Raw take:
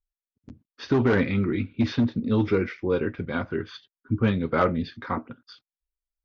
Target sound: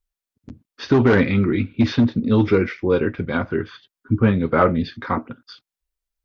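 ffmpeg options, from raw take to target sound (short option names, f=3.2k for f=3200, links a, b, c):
-filter_complex "[0:a]asettb=1/sr,asplit=3[a][b][c];[a]atrim=end=3.374[d];[b]atrim=start=3.37:end=4.7,asetpts=PTS-STARTPTS,afade=t=in:d=0.004:c=qsin,afade=t=out:st=1.326:d=0.004:c=qsin,acrossover=split=2600[e][f];[f]acompressor=threshold=-54dB:ratio=4:attack=1:release=60[g];[e][g]amix=inputs=2:normalize=0[h];[c]atrim=start=4.696[i];[d][h]acrossfade=d=0.004:c1=hsin:c2=qsin[j];[j][i]acrossfade=d=0.004:c1=qsin:c2=hsin,volume=6dB"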